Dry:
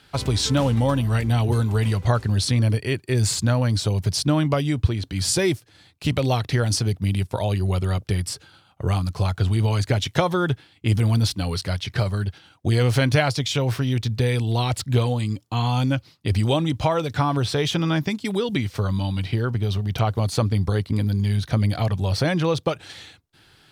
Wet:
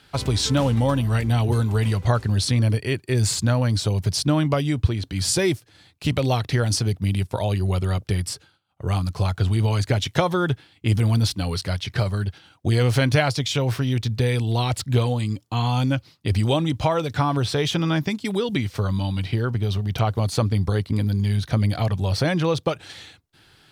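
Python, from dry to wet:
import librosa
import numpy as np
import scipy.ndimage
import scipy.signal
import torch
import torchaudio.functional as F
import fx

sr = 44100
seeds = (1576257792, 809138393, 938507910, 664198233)

y = fx.edit(x, sr, fx.fade_down_up(start_s=8.32, length_s=0.63, db=-21.0, fade_s=0.27), tone=tone)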